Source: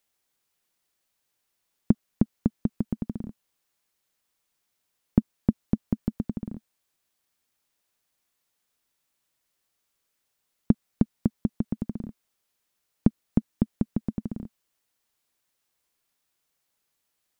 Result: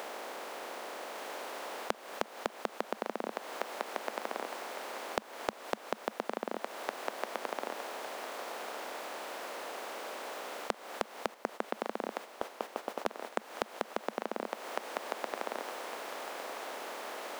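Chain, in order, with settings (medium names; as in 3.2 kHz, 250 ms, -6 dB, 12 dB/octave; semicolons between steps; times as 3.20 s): spectral levelling over time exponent 0.4; high-pass 540 Hz 24 dB/octave; thinning echo 1157 ms, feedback 26%, high-pass 840 Hz, level -4 dB; 11.34–13.50 s: gate -52 dBFS, range -9 dB; compression 8:1, threshold -46 dBFS, peak gain reduction 14.5 dB; trim +16 dB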